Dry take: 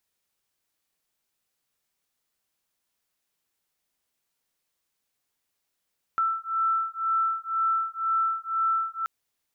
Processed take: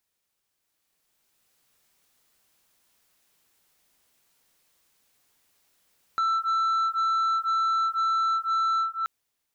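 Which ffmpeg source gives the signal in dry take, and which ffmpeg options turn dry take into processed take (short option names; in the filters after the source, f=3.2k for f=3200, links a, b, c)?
-f lavfi -i "aevalsrc='0.0473*(sin(2*PI*1330*t)+sin(2*PI*1332*t))':d=2.88:s=44100"
-af "dynaudnorm=f=140:g=17:m=11.5dB,alimiter=limit=-17.5dB:level=0:latency=1,asoftclip=type=tanh:threshold=-21.5dB"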